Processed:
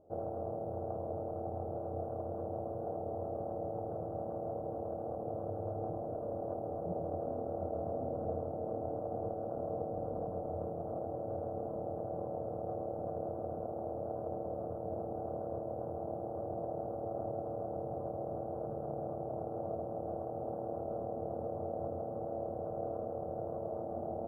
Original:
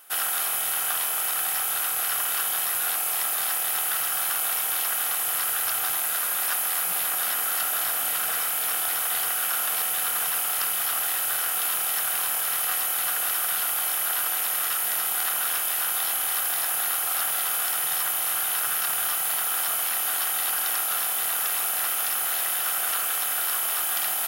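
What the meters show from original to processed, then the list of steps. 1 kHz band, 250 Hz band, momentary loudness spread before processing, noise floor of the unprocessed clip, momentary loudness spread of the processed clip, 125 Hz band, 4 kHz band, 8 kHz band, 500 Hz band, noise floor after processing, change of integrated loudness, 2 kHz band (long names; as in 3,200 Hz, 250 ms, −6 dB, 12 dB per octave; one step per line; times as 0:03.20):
−9.5 dB, +10.5 dB, 0 LU, −27 dBFS, 2 LU, can't be measured, below −40 dB, below −40 dB, +7.5 dB, −41 dBFS, −16.5 dB, below −40 dB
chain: elliptic low-pass filter 590 Hz, stop band 70 dB
parametric band 90 Hz +13.5 dB 0.3 octaves
level +10.5 dB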